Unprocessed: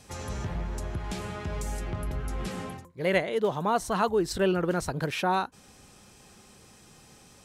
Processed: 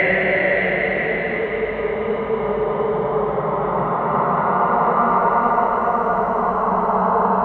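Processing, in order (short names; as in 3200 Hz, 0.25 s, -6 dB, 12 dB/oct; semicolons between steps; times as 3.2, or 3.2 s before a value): diffused feedback echo 0.583 s, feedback 43%, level -8.5 dB; low-pass sweep 4400 Hz -> 610 Hz, 2.1–4.64; Paulstretch 8.9×, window 0.50 s, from 3.15; gain +5 dB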